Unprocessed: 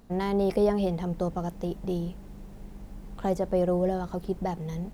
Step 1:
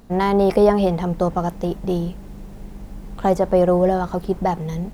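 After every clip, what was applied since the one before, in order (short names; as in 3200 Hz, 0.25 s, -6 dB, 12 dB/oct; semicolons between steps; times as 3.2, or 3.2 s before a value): dynamic EQ 1100 Hz, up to +6 dB, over -41 dBFS, Q 0.82; gain +7.5 dB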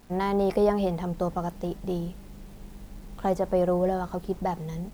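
bit-crush 8-bit; gain -8 dB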